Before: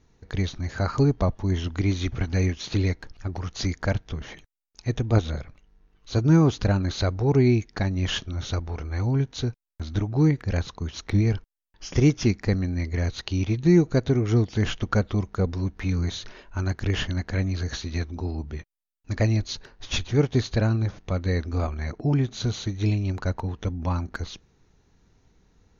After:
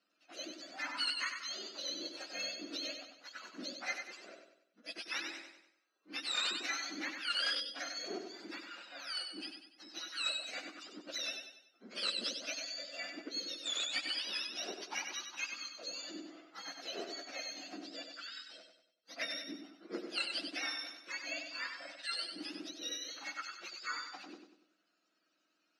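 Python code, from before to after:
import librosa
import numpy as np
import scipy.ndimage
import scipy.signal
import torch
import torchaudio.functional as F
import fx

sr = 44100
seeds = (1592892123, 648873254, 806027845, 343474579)

p1 = fx.octave_mirror(x, sr, pivot_hz=1100.0)
p2 = fx.peak_eq(p1, sr, hz=550.0, db=-8.0, octaves=2.9)
p3 = p2 + fx.echo_feedback(p2, sr, ms=96, feedback_pct=43, wet_db=-6.5, dry=0)
p4 = 10.0 ** (-19.5 / 20.0) * (np.abs((p3 / 10.0 ** (-19.5 / 20.0) + 3.0) % 4.0 - 2.0) - 1.0)
p5 = fx.cabinet(p4, sr, low_hz=360.0, low_slope=24, high_hz=4700.0, hz=(410.0, 890.0, 1400.0, 3300.0), db=(-6, -9, 6, -8))
y = p5 * 10.0 ** (-2.0 / 20.0)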